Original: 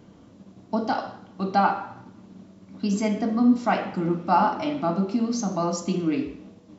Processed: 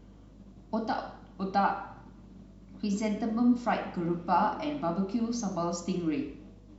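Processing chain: hum 50 Hz, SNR 23 dB; gain -6 dB

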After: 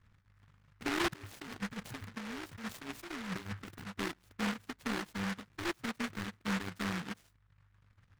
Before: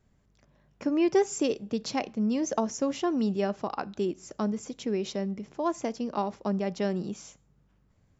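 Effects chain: FFT order left unsorted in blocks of 64 samples; reverb removal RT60 0.87 s; bell 100 Hz +11 dB 0.22 oct; 1.12–3.7 negative-ratio compressor -37 dBFS, ratio -1; soft clip -26 dBFS, distortion -12 dB; running mean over 20 samples; noise-modulated delay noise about 1400 Hz, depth 0.4 ms

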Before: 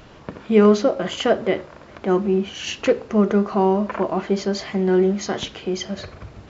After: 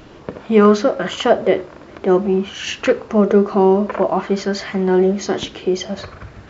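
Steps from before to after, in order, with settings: LFO bell 0.55 Hz 310–1700 Hz +7 dB; gain +2 dB

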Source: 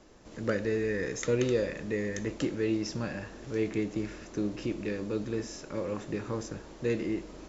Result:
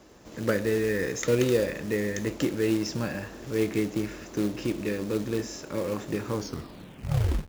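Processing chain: tape stop at the end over 1.15 s; short-mantissa float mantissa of 2-bit; HPF 46 Hz; gain +4 dB

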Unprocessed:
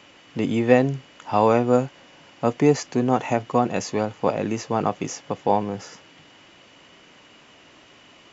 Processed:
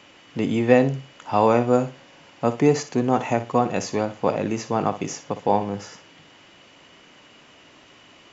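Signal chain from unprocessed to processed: flutter echo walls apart 10.2 m, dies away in 0.28 s

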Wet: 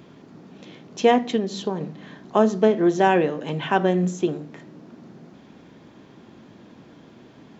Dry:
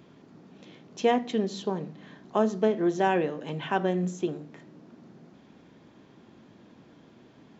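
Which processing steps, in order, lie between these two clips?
1.36–1.81 compressor 2.5:1, threshold -29 dBFS, peak gain reduction 5.5 dB; gain +6.5 dB

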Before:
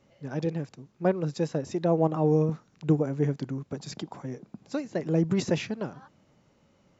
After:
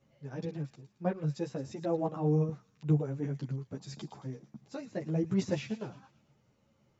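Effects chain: bell 130 Hz +9.5 dB 0.51 oct; thin delay 0.112 s, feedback 49%, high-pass 2600 Hz, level -11 dB; ensemble effect; gain -5 dB

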